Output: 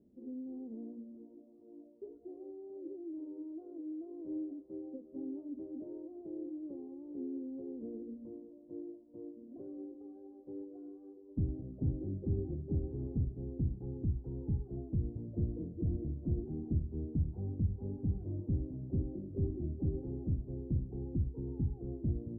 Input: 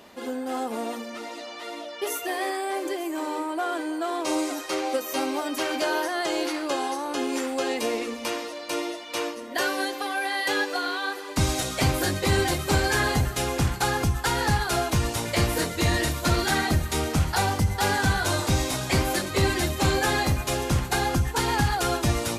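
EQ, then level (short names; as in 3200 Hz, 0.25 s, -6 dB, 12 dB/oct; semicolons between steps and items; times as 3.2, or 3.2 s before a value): inverse Chebyshev low-pass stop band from 2000 Hz, stop band 80 dB; -9.0 dB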